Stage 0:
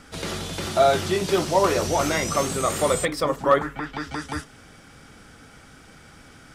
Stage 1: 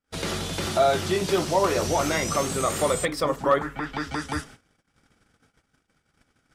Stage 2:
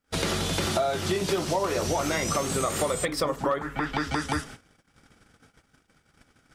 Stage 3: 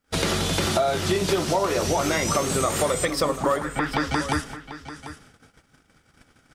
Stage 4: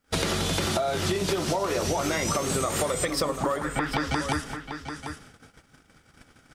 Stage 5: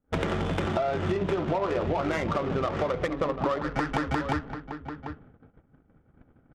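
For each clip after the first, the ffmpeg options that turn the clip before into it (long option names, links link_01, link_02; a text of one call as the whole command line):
ffmpeg -i in.wav -filter_complex "[0:a]agate=range=-41dB:threshold=-44dB:ratio=16:detection=peak,asplit=2[link_01][link_02];[link_02]alimiter=limit=-17dB:level=0:latency=1:release=395,volume=2dB[link_03];[link_01][link_03]amix=inputs=2:normalize=0,volume=-6dB" out.wav
ffmpeg -i in.wav -af "acompressor=threshold=-29dB:ratio=6,volume=5.5dB" out.wav
ffmpeg -i in.wav -af "aecho=1:1:742:0.211,volume=3.5dB" out.wav
ffmpeg -i in.wav -af "acompressor=threshold=-25dB:ratio=6,volume=2dB" out.wav
ffmpeg -i in.wav -af "aresample=8000,aresample=44100,adynamicsmooth=sensitivity=2.5:basefreq=700" out.wav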